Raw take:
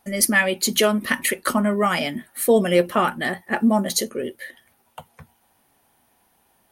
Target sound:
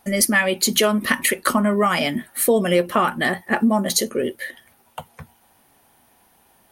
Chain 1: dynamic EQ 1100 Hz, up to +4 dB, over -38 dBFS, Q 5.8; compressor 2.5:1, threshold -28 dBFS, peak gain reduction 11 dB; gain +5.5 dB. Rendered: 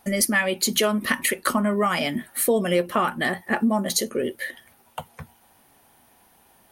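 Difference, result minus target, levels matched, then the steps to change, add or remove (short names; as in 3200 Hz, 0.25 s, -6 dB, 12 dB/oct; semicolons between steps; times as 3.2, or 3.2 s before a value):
compressor: peak gain reduction +3.5 dB
change: compressor 2.5:1, threshold -22 dBFS, peak gain reduction 7.5 dB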